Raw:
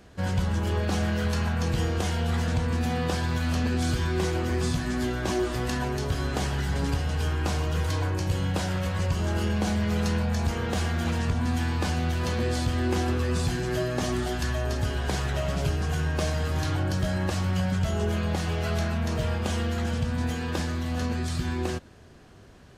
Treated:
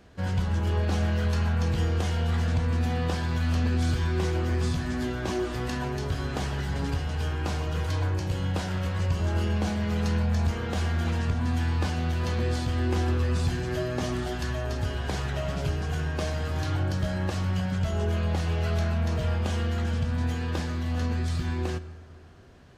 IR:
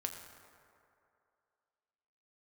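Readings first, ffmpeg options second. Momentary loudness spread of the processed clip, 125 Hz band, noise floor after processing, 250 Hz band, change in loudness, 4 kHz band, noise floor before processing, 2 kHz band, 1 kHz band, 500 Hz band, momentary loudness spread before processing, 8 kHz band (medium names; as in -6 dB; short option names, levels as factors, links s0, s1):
4 LU, +0.5 dB, -38 dBFS, -2.0 dB, -0.5 dB, -3.0 dB, -45 dBFS, -2.5 dB, -2.0 dB, -2.0 dB, 2 LU, -5.5 dB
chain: -filter_complex "[0:a]asplit=2[s0][s1];[1:a]atrim=start_sample=2205,lowpass=6800[s2];[s1][s2]afir=irnorm=-1:irlink=0,volume=0.668[s3];[s0][s3]amix=inputs=2:normalize=0,volume=0.501"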